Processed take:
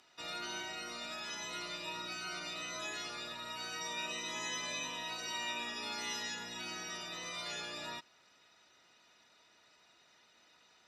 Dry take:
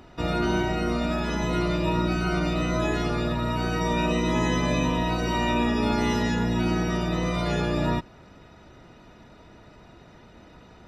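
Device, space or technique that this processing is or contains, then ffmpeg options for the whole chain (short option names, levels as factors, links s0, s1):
piezo pickup straight into a mixer: -af "lowpass=8100,aderivative,equalizer=f=9000:t=o:w=0.54:g=-3,volume=1.19"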